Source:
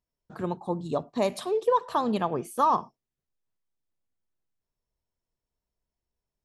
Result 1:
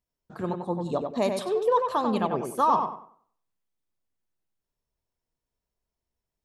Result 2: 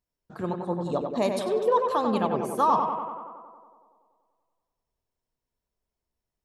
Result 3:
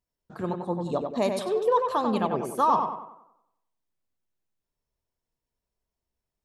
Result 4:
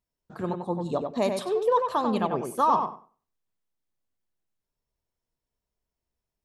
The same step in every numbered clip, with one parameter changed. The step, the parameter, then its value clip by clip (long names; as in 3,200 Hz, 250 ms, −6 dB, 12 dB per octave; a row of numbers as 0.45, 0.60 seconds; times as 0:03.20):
tape delay, feedback: 33, 77, 49, 21%